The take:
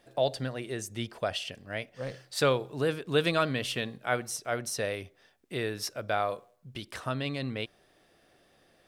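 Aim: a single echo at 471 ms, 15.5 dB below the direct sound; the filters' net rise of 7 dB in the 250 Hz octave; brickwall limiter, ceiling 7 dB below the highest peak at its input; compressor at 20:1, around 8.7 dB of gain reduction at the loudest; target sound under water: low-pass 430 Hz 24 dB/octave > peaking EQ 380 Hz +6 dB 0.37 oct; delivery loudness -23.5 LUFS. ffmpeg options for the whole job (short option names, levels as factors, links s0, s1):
-af "equalizer=f=250:t=o:g=7.5,acompressor=threshold=0.0501:ratio=20,alimiter=limit=0.075:level=0:latency=1,lowpass=f=430:w=0.5412,lowpass=f=430:w=1.3066,equalizer=f=380:t=o:w=0.37:g=6,aecho=1:1:471:0.168,volume=4.73"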